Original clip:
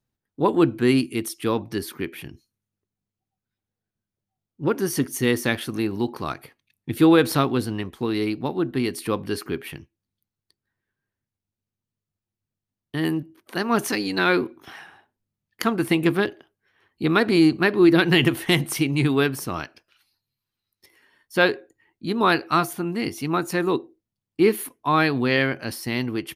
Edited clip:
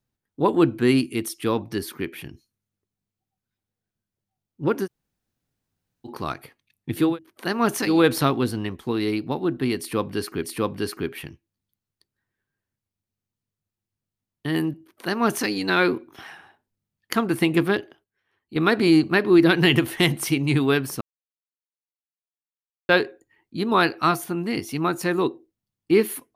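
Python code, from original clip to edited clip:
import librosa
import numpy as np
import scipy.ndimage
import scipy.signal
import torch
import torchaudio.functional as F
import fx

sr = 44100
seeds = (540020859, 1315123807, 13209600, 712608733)

y = fx.edit(x, sr, fx.room_tone_fill(start_s=4.85, length_s=1.22, crossfade_s=0.06),
    fx.repeat(start_s=8.92, length_s=0.65, count=2),
    fx.duplicate(start_s=13.17, length_s=0.86, to_s=7.07, crossfade_s=0.24),
    fx.fade_down_up(start_s=16.26, length_s=1.06, db=-9.5, fade_s=0.27, curve='log'),
    fx.silence(start_s=19.5, length_s=1.88), tone=tone)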